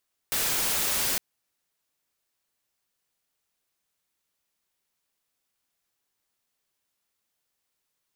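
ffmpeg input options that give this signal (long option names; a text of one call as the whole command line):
ffmpeg -f lavfi -i "anoisesrc=color=white:amplitude=0.0819:duration=0.86:sample_rate=44100:seed=1" out.wav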